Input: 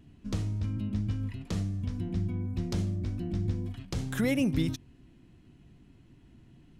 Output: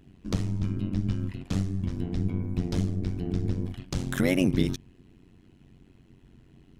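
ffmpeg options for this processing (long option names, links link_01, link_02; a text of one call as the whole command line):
ffmpeg -i in.wav -filter_complex "[0:a]asplit=2[link_01][link_02];[link_02]aeval=exprs='sgn(val(0))*max(abs(val(0))-0.00501,0)':channel_layout=same,volume=-11.5dB[link_03];[link_01][link_03]amix=inputs=2:normalize=0,tremolo=f=92:d=0.974,volume=5.5dB" out.wav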